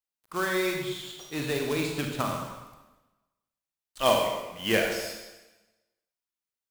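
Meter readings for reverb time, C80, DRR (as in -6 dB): 1.1 s, 5.5 dB, 1.5 dB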